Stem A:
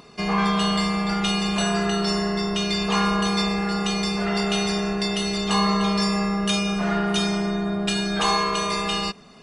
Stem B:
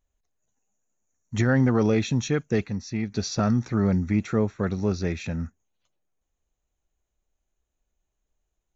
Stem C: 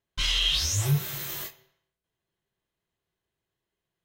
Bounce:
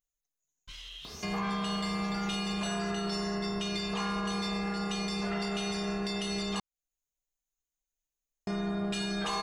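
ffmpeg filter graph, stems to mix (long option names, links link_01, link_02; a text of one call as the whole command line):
ffmpeg -i stem1.wav -i stem2.wav -i stem3.wav -filter_complex "[0:a]adelay=1050,volume=-0.5dB,asplit=3[link_01][link_02][link_03];[link_01]atrim=end=6.6,asetpts=PTS-STARTPTS,afade=type=out:start_time=6.596:duration=0.004:curve=hsin[link_04];[link_02]atrim=start=6.6:end=8.47,asetpts=PTS-STARTPTS,volume=0[link_05];[link_03]atrim=start=8.47,asetpts=PTS-STARTPTS,afade=type=in:duration=0.004:curve=hsin[link_06];[link_04][link_05][link_06]concat=n=3:v=0:a=1[link_07];[1:a]aecho=1:1:6.8:0.65,crystalizer=i=5.5:c=0,volume=-20dB,asplit=2[link_08][link_09];[2:a]adelay=500,volume=-17.5dB,asplit=2[link_10][link_11];[link_11]volume=-12dB[link_12];[link_09]apad=whole_len=200302[link_13];[link_10][link_13]sidechaincompress=threshold=-41dB:ratio=8:attack=16:release=390[link_14];[link_08][link_14]amix=inputs=2:normalize=0,acompressor=threshold=-42dB:ratio=6,volume=0dB[link_15];[link_12]aecho=0:1:559|1118|1677|2236|2795|3354:1|0.41|0.168|0.0689|0.0283|0.0116[link_16];[link_07][link_15][link_16]amix=inputs=3:normalize=0,asoftclip=type=tanh:threshold=-13.5dB,alimiter=level_in=1.5dB:limit=-24dB:level=0:latency=1:release=370,volume=-1.5dB" out.wav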